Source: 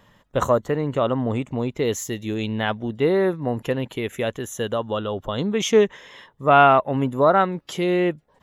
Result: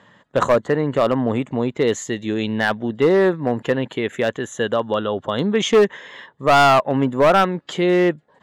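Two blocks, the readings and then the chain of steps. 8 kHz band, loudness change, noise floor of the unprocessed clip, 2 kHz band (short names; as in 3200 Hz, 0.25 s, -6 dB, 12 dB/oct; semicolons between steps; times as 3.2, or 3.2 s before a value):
0.0 dB, +3.0 dB, -61 dBFS, +4.5 dB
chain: speaker cabinet 140–7500 Hz, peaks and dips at 1700 Hz +5 dB, 2500 Hz -3 dB, 5600 Hz -10 dB; overloaded stage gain 13.5 dB; gain +4.5 dB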